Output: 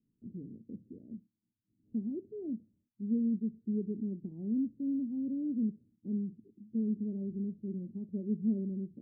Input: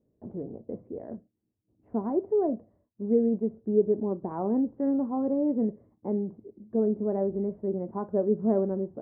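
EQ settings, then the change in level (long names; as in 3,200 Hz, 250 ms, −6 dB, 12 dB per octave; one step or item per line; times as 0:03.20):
inverse Chebyshev low-pass filter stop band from 1,500 Hz, stop band 80 dB
parametric band 64 Hz −14 dB 1.7 octaves
0.0 dB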